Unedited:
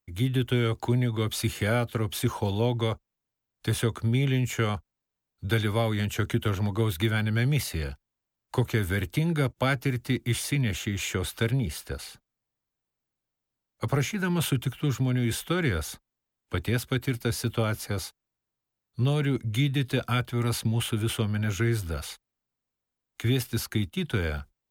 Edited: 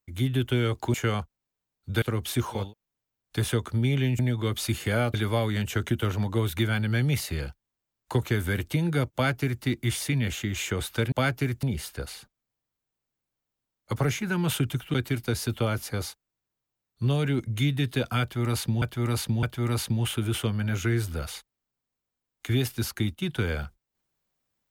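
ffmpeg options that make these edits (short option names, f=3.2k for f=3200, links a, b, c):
-filter_complex "[0:a]asplit=11[a][b][c][d][e][f][g][h][i][j][k];[a]atrim=end=0.942[l];[b]atrim=start=4.488:end=5.572[m];[c]atrim=start=1.888:end=2.61[n];[d]atrim=start=2.8:end=4.492[o];[e]atrim=start=0.938:end=1.892[p];[f]atrim=start=5.568:end=11.552[q];[g]atrim=start=9.558:end=10.072[r];[h]atrim=start=11.548:end=14.862[s];[i]atrim=start=16.908:end=20.792[t];[j]atrim=start=20.178:end=20.792[u];[k]atrim=start=20.178[v];[l][m]acrossfade=d=0.004:c1=hsin:c2=hsin[w];[w][n]acrossfade=d=0.004:c1=hsin:c2=hsin[x];[x][o]acrossfade=d=0.24:c1=tri:c2=tri[y];[y][p]acrossfade=d=0.004:c1=hsin:c2=hsin[z];[z][q]acrossfade=d=0.004:c1=hsin:c2=hsin[aa];[aa][r]acrossfade=d=0.004:c1=hsin:c2=hsin[ab];[ab][s]acrossfade=d=0.004:c1=hsin:c2=hsin[ac];[ac][t]acrossfade=d=0.004:c1=hsin:c2=hsin[ad];[ad][u]acrossfade=d=0.004:c1=hsin:c2=hsin[ae];[ae][v]acrossfade=d=0.004:c1=hsin:c2=hsin"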